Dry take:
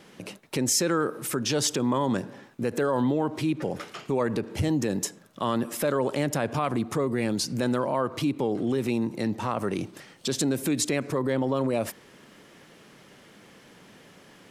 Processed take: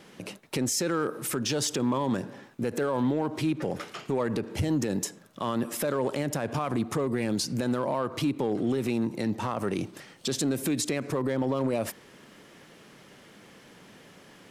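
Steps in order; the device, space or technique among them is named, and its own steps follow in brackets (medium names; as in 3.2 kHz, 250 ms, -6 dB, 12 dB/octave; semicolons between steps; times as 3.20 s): limiter into clipper (peak limiter -18.5 dBFS, peak gain reduction 6 dB; hard clipper -20 dBFS, distortion -27 dB)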